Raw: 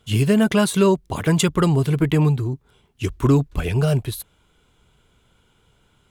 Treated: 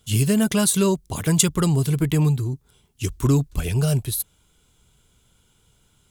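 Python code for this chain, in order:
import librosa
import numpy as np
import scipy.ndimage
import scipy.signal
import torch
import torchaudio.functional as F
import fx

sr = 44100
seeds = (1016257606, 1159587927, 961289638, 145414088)

y = fx.bass_treble(x, sr, bass_db=5, treble_db=14)
y = F.gain(torch.from_numpy(y), -5.5).numpy()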